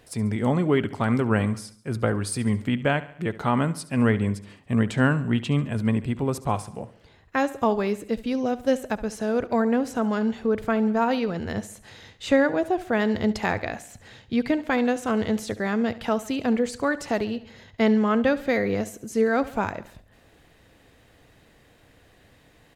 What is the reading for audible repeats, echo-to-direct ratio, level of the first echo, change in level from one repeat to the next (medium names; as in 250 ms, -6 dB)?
4, -15.5 dB, -17.0 dB, -6.0 dB